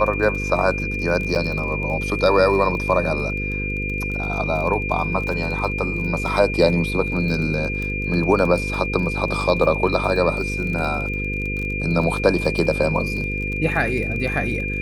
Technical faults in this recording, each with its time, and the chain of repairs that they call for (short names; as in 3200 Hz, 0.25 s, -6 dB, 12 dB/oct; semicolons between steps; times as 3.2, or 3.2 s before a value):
buzz 50 Hz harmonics 10 -27 dBFS
crackle 27/s -27 dBFS
tone 2400 Hz -26 dBFS
1.35–1.36 gap 7 ms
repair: de-click; de-hum 50 Hz, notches 10; notch 2400 Hz, Q 30; interpolate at 1.35, 7 ms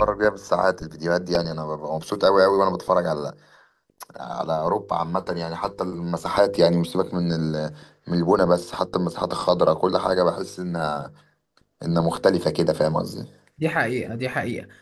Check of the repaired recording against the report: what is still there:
none